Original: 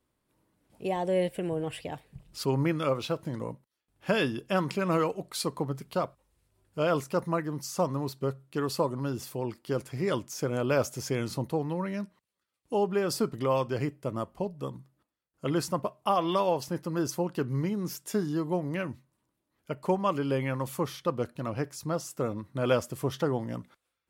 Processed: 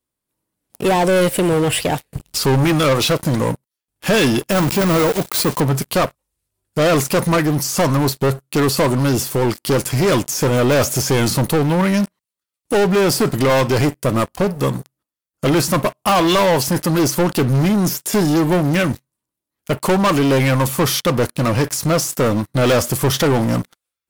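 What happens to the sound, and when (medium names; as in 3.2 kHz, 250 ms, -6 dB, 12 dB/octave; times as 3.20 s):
4.51–5.61 s: block-companded coder 3-bit
whole clip: treble shelf 4.4 kHz +12 dB; de-esser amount 70%; waveshaping leveller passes 5; trim +2 dB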